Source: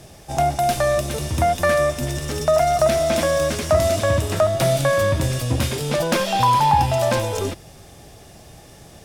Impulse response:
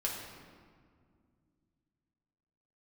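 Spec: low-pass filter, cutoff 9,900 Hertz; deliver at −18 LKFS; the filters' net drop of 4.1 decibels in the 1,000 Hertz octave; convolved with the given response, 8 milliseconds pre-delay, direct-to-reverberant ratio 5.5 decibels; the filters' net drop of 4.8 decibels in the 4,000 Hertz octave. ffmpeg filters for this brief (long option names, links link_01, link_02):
-filter_complex "[0:a]lowpass=9900,equalizer=frequency=1000:width_type=o:gain=-5.5,equalizer=frequency=4000:width_type=o:gain=-6,asplit=2[link_01][link_02];[1:a]atrim=start_sample=2205,adelay=8[link_03];[link_02][link_03]afir=irnorm=-1:irlink=0,volume=-9dB[link_04];[link_01][link_04]amix=inputs=2:normalize=0,volume=2.5dB"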